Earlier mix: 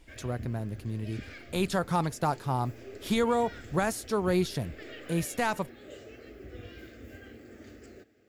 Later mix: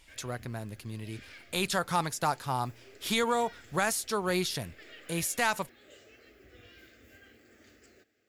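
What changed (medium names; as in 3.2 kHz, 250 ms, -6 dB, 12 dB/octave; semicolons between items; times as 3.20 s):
background -7.5 dB; master: add tilt shelf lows -6 dB, about 860 Hz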